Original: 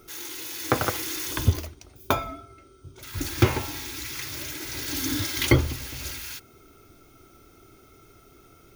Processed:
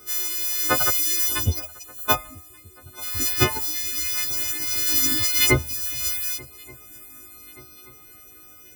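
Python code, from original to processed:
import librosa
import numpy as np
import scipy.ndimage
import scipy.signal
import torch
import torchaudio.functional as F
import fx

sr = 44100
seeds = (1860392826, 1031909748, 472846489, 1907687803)

y = fx.freq_snap(x, sr, grid_st=3)
y = fx.dereverb_blind(y, sr, rt60_s=0.74)
y = fx.echo_swing(y, sr, ms=1180, ratio=3, feedback_pct=49, wet_db=-24)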